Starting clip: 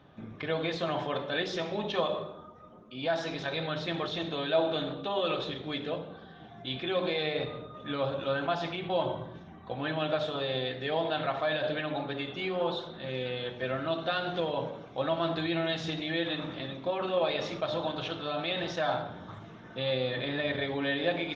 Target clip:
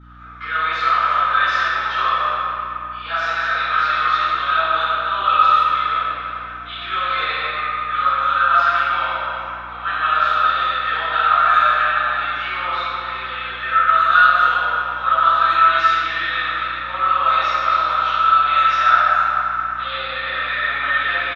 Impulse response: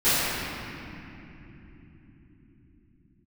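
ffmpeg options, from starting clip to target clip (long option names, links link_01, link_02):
-filter_complex "[0:a]highpass=frequency=1300:width_type=q:width=15,asplit=2[link_01][link_02];[link_02]adelay=250,highpass=300,lowpass=3400,asoftclip=type=hard:threshold=-16.5dB,volume=-15dB[link_03];[link_01][link_03]amix=inputs=2:normalize=0[link_04];[1:a]atrim=start_sample=2205[link_05];[link_04][link_05]afir=irnorm=-1:irlink=0,aeval=exprs='val(0)+0.0224*(sin(2*PI*60*n/s)+sin(2*PI*2*60*n/s)/2+sin(2*PI*3*60*n/s)/3+sin(2*PI*4*60*n/s)/4+sin(2*PI*5*60*n/s)/5)':channel_layout=same,volume=-9.5dB"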